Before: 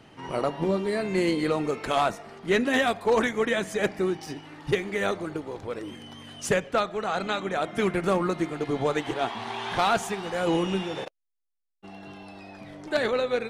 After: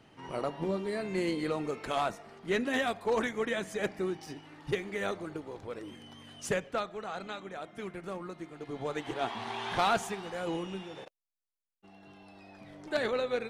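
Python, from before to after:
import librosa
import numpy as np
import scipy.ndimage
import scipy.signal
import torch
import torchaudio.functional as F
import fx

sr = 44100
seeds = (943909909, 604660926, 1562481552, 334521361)

y = fx.gain(x, sr, db=fx.line((6.56, -7.0), (7.82, -15.5), (8.46, -15.5), (9.33, -4.0), (9.9, -4.0), (10.71, -12.0), (11.92, -12.0), (12.95, -5.5)))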